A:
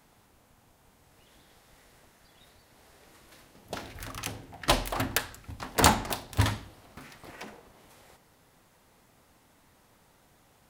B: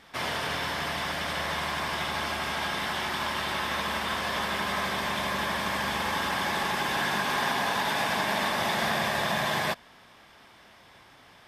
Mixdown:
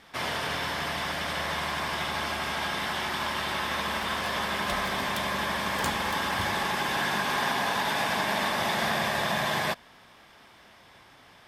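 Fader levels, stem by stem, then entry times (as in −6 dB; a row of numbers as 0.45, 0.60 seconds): −13.0, 0.0 decibels; 0.00, 0.00 seconds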